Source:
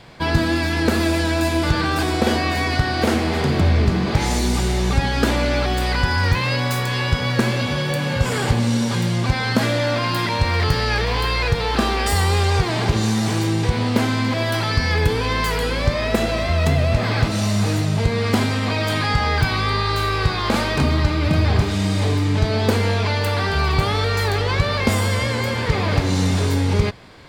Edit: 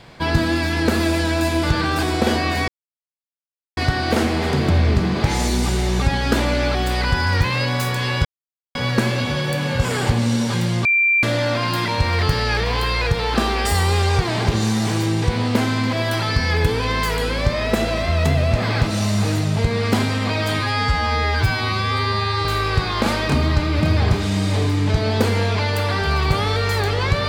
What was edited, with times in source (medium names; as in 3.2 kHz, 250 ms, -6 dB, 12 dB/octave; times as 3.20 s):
2.68 s: insert silence 1.09 s
7.16 s: insert silence 0.50 s
9.26–9.64 s: bleep 2.36 kHz -13 dBFS
19.00–19.93 s: stretch 2×